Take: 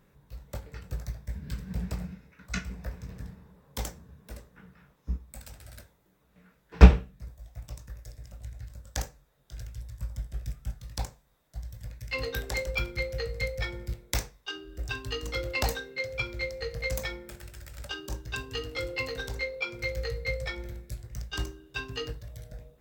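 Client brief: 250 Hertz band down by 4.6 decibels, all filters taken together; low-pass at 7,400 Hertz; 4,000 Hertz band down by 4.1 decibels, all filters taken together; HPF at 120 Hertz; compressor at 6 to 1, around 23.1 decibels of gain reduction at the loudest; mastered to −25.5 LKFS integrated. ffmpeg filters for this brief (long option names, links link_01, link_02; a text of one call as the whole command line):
ffmpeg -i in.wav -af "highpass=120,lowpass=7400,equalizer=frequency=250:width_type=o:gain=-6.5,equalizer=frequency=4000:width_type=o:gain=-5,acompressor=threshold=-41dB:ratio=6,volume=21dB" out.wav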